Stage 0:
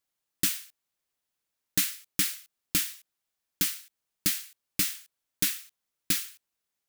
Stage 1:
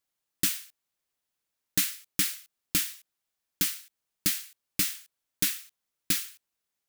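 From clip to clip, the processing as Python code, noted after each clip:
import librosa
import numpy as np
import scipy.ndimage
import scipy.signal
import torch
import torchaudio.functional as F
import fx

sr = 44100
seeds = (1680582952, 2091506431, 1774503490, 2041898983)

y = x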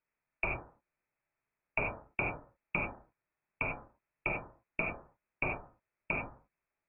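y = fx.freq_invert(x, sr, carrier_hz=2600)
y = fx.rev_gated(y, sr, seeds[0], gate_ms=120, shape='flat', drr_db=0.0)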